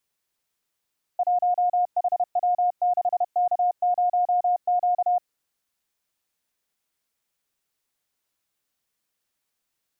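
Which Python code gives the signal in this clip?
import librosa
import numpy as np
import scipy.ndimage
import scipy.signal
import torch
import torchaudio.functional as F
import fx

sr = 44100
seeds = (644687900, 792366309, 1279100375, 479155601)

y = fx.morse(sr, text='1HW6K0Q', wpm=31, hz=716.0, level_db=-18.0)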